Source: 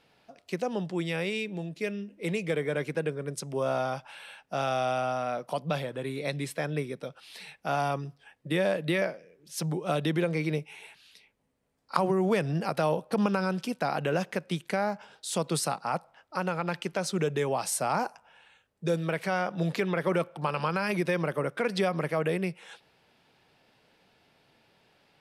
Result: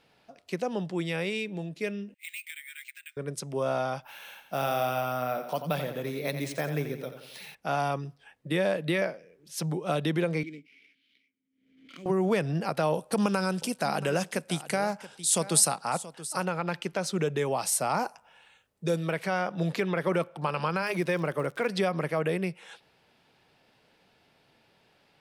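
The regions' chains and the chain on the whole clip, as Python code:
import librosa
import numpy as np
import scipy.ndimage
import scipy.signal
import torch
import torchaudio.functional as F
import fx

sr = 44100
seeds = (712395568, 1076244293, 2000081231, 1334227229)

y = fx.chain(x, sr, fx.steep_highpass(hz=2000.0, slope=36),
    fx.high_shelf(hz=8300.0, db=-12.0),
    fx.resample_bad(factor=4, down='filtered', up='hold'), at=(2.14, 3.17))
y = fx.chain(y, sr, fx.echo_feedback(ms=87, feedback_pct=50, wet_db=-9.5),
    fx.resample_bad(factor=3, down='none', up='hold'), at=(4.02, 7.55))
y = fx.chain(y, sr, fx.sample_hold(seeds[0], rate_hz=7800.0, jitter_pct=20),
    fx.vowel_filter(vowel='i'),
    fx.pre_swell(db_per_s=73.0), at=(10.43, 12.06))
y = fx.chain(y, sr, fx.peak_eq(hz=9000.0, db=13.0, octaves=1.3),
    fx.echo_single(ms=679, db=-15.5), at=(12.94, 16.45))
y = fx.chain(y, sr, fx.high_shelf(hz=6600.0, db=5.5),
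    fx.notch(hz=1600.0, q=22.0), at=(17.45, 19.12))
y = fx.notch(y, sr, hz=210.0, q=6.8, at=(20.81, 21.67), fade=0.02)
y = fx.dmg_crackle(y, sr, seeds[1], per_s=86.0, level_db=-38.0, at=(20.81, 21.67), fade=0.02)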